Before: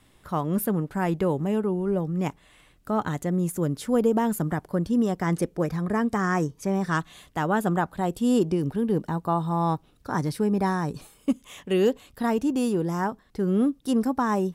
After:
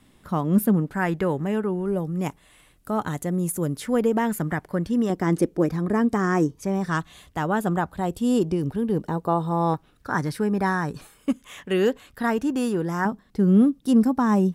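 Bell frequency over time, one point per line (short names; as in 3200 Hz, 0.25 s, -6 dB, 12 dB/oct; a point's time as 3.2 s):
bell +8 dB 0.86 oct
220 Hz
from 0.94 s 1700 Hz
from 1.86 s 11000 Hz
from 3.8 s 2000 Hz
from 5.1 s 310 Hz
from 6.55 s 70 Hz
from 9.05 s 460 Hz
from 9.74 s 1600 Hz
from 13.05 s 200 Hz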